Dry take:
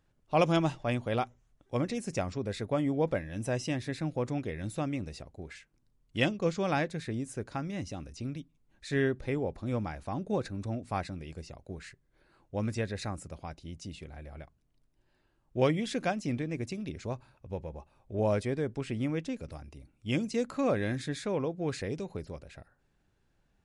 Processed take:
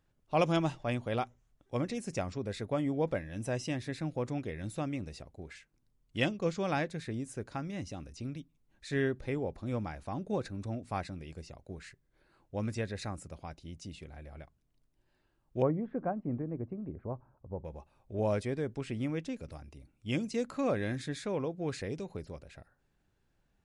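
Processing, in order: 15.62–17.65 LPF 1200 Hz 24 dB/oct; gain -2.5 dB

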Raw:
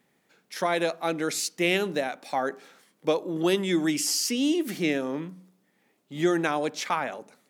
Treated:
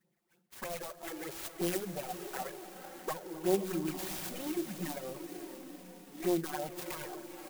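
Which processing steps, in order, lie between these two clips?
self-modulated delay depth 0.53 ms; low shelf 120 Hz -2 dB; comb 5.4 ms, depth 54%; phaser stages 6, 3.2 Hz, lowest notch 120–2500 Hz; diffused feedback echo 0.483 s, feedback 60%, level -10 dB; envelope flanger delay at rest 5.9 ms, full sweep at -19 dBFS; split-band echo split 1200 Hz, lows 0.261 s, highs 0.657 s, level -16 dB; clock jitter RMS 0.065 ms; gain -6 dB

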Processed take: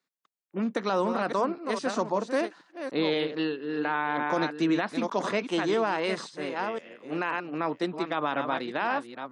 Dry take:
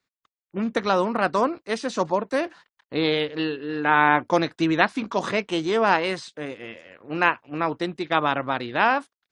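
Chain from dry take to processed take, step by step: reverse delay 0.522 s, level -9 dB; HPF 160 Hz 24 dB/oct; bell 2700 Hz -2.5 dB 1.5 oct; limiter -14 dBFS, peak gain reduction 10.5 dB; gain -2.5 dB

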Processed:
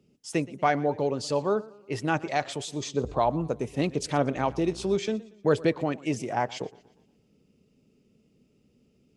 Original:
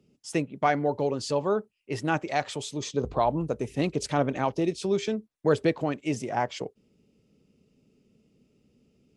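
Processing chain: 4.35–4.95 buzz 60 Hz, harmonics 28, -46 dBFS -6 dB/oct; warbling echo 0.119 s, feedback 45%, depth 113 cents, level -21 dB

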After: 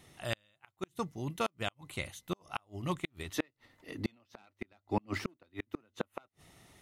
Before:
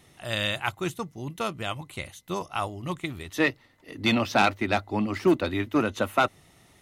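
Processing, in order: flipped gate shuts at -17 dBFS, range -39 dB; gain -2.5 dB

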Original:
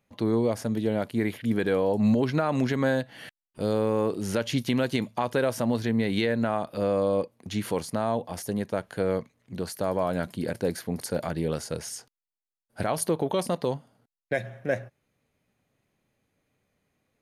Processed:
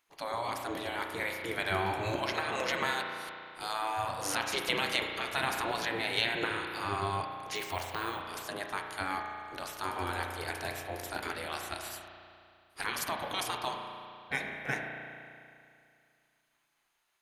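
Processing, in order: spectral gate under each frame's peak -15 dB weak; spring tank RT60 2.4 s, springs 34 ms, chirp 65 ms, DRR 2.5 dB; 7.55–8.2 careless resampling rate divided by 2×, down filtered, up hold; gain +4 dB

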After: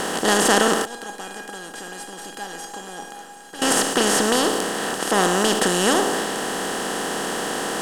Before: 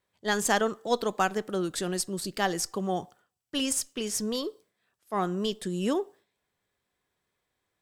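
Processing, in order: per-bin compression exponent 0.2; 0.85–3.62 resonator 810 Hz, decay 0.31 s, mix 90%; gain +1.5 dB

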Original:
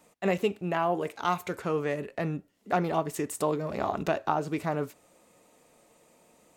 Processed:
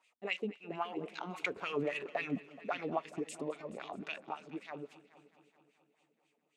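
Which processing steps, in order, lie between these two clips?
Doppler pass-by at 1.97, 6 m/s, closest 2.8 m; band shelf 4800 Hz +10 dB 2.5 oct; limiter -23 dBFS, peak gain reduction 8.5 dB; LFO band-pass sine 3.7 Hz 210–2900 Hz; multi-head echo 0.213 s, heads first and second, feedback 52%, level -21 dB; gain +6.5 dB

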